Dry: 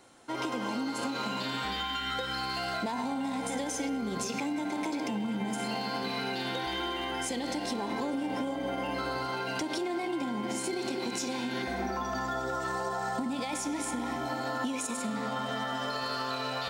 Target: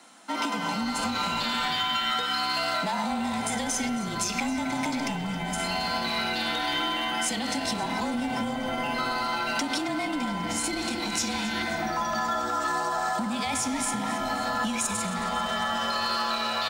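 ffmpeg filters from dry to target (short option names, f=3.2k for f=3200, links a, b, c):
-filter_complex "[0:a]highpass=f=250:w=0.5412,highpass=f=250:w=1.3066,equalizer=f=460:t=o:w=0.66:g=-13.5,afreqshift=-33,asplit=2[a][b];[b]asplit=6[c][d][e][f][g][h];[c]adelay=270,afreqshift=-130,volume=-16dB[i];[d]adelay=540,afreqshift=-260,volume=-20.2dB[j];[e]adelay=810,afreqshift=-390,volume=-24.3dB[k];[f]adelay=1080,afreqshift=-520,volume=-28.5dB[l];[g]adelay=1350,afreqshift=-650,volume=-32.6dB[m];[h]adelay=1620,afreqshift=-780,volume=-36.8dB[n];[i][j][k][l][m][n]amix=inputs=6:normalize=0[o];[a][o]amix=inputs=2:normalize=0,volume=7.5dB"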